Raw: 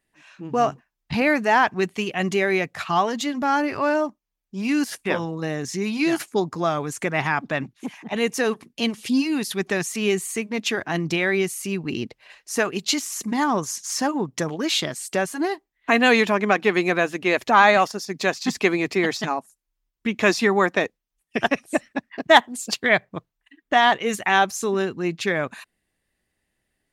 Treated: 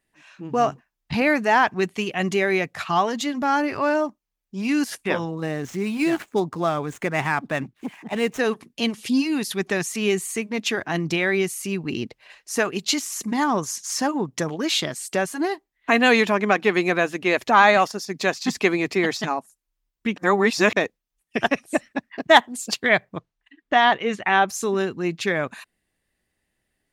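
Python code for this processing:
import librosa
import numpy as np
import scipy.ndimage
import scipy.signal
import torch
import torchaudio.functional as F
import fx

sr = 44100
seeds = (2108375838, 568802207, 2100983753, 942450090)

y = fx.median_filter(x, sr, points=9, at=(5.29, 8.38), fade=0.02)
y = fx.lowpass(y, sr, hz=fx.line((23.17, 7800.0), (24.47, 2900.0)), slope=12, at=(23.17, 24.47), fade=0.02)
y = fx.edit(y, sr, fx.reverse_span(start_s=20.16, length_s=0.6), tone=tone)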